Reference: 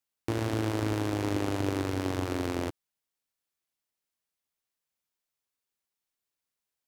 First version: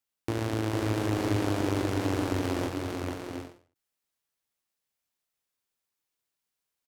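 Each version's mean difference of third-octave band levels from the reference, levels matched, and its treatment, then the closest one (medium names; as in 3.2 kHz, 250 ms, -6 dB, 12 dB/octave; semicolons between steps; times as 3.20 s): 1.5 dB: on a send: bouncing-ball echo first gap 450 ms, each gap 0.6×, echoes 5; on the sum: endings held to a fixed fall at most 140 dB/s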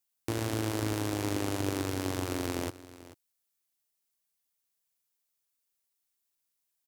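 2.5 dB: treble shelf 5.2 kHz +11 dB; delay 438 ms -17 dB; trim -2.5 dB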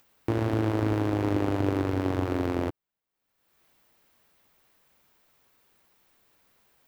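4.0 dB: peaking EQ 8.5 kHz -13 dB 2.6 oct; upward compressor, threshold -50 dBFS; trim +4 dB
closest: first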